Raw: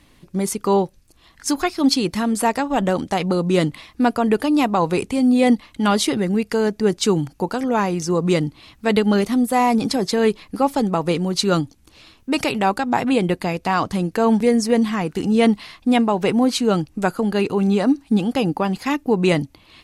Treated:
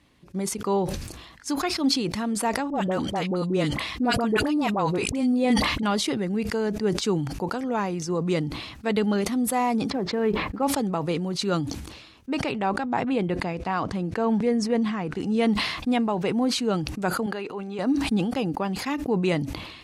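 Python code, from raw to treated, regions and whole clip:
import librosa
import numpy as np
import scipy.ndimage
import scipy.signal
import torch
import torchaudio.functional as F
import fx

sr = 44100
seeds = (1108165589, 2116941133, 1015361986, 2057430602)

y = fx.chain(x, sr, fx.dispersion(late='highs', ms=49.0, hz=930.0),
    fx.sustainer(db_per_s=37.0), at=(2.7, 5.83))
y = fx.chain(y, sr, fx.lowpass(hz=1900.0, slope=12),
    fx.quant_companded(bits=8), at=(9.9, 10.63))
y = fx.chain(y, sr, fx.lowpass(hz=11000.0, slope=24),
    fx.high_shelf(hz=4200.0, db=-8.5), at=(12.3, 15.2))
y = fx.chain(y, sr, fx.highpass(hz=720.0, slope=6),
    fx.high_shelf(hz=3700.0, db=-10.0), at=(17.26, 17.79))
y = scipy.signal.sosfilt(scipy.signal.butter(2, 50.0, 'highpass', fs=sr, output='sos'), y)
y = fx.high_shelf(y, sr, hz=10000.0, db=-10.5)
y = fx.sustainer(y, sr, db_per_s=51.0)
y = y * librosa.db_to_amplitude(-7.0)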